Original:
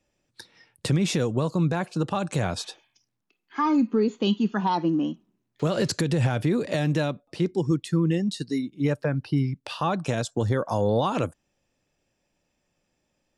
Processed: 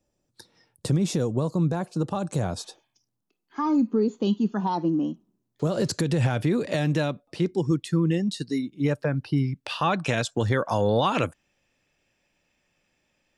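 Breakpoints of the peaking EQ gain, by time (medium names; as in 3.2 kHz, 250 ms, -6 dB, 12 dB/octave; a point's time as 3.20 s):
peaking EQ 2.3 kHz 1.6 oct
5.67 s -10.5 dB
6.18 s +0.5 dB
9.49 s +0.5 dB
9.91 s +8.5 dB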